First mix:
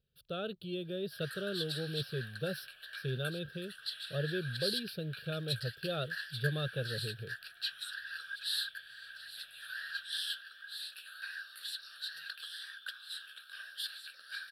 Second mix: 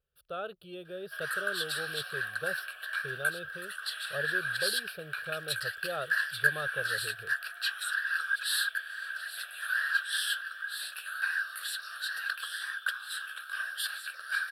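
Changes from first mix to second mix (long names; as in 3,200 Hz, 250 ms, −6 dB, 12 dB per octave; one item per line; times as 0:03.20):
background +9.5 dB
master: add octave-band graphic EQ 125/250/1,000/4,000/8,000 Hz −9/−11/+12/−9/+3 dB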